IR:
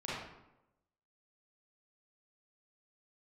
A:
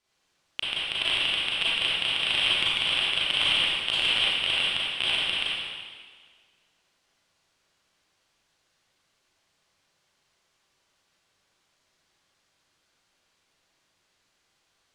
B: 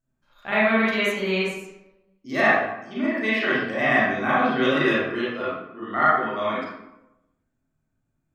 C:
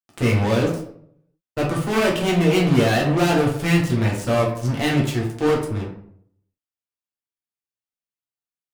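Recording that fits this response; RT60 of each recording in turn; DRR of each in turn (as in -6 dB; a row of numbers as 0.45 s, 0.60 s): B; 1.7 s, 0.90 s, 0.65 s; -8.0 dB, -9.0 dB, -3.5 dB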